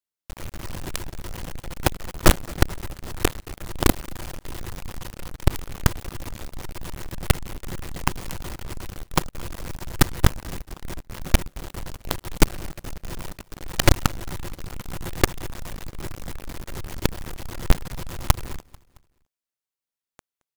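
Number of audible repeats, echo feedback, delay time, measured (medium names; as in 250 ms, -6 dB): 2, 49%, 221 ms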